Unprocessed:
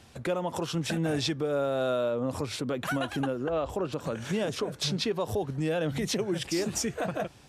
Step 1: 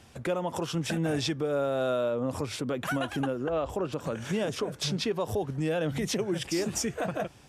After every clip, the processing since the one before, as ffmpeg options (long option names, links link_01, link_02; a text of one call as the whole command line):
ffmpeg -i in.wav -af "equalizer=frequency=4100:width=6.3:gain=-5" out.wav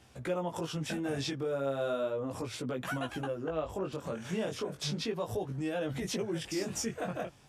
ffmpeg -i in.wav -af "flanger=delay=15.5:depth=7:speed=0.35,volume=-2dB" out.wav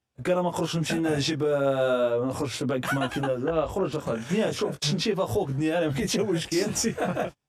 ffmpeg -i in.wav -af "agate=range=-32dB:threshold=-42dB:ratio=16:detection=peak,volume=9dB" out.wav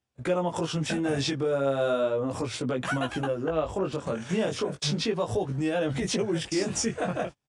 ffmpeg -i in.wav -af "aresample=22050,aresample=44100,volume=-2dB" out.wav